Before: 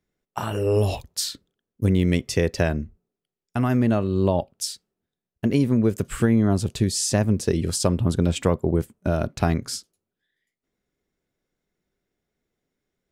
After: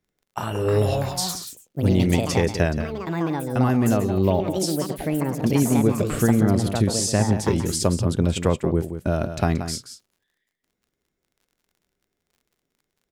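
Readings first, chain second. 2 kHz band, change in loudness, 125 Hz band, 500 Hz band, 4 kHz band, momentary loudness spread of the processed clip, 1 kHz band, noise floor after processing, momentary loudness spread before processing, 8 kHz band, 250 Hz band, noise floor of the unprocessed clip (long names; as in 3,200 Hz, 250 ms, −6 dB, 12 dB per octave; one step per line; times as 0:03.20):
+1.5 dB, +1.0 dB, +1.5 dB, +1.5 dB, +1.0 dB, 8 LU, +3.5 dB, −80 dBFS, 10 LU, +1.5 dB, +1.5 dB, below −85 dBFS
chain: surface crackle 31 per second −50 dBFS
single-tap delay 179 ms −10 dB
delay with pitch and tempo change per echo 404 ms, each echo +5 semitones, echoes 2, each echo −6 dB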